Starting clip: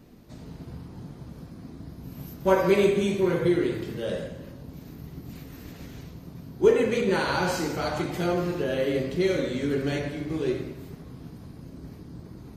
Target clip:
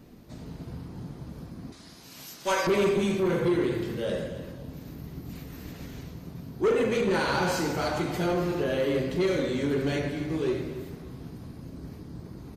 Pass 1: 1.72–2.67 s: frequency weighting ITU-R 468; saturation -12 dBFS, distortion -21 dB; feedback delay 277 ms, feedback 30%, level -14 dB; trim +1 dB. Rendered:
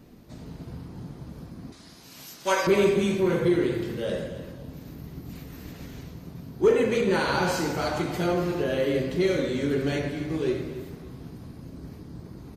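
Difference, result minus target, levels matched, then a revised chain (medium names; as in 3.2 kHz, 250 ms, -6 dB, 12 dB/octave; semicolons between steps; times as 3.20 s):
saturation: distortion -9 dB
1.72–2.67 s: frequency weighting ITU-R 468; saturation -20 dBFS, distortion -12 dB; feedback delay 277 ms, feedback 30%, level -14 dB; trim +1 dB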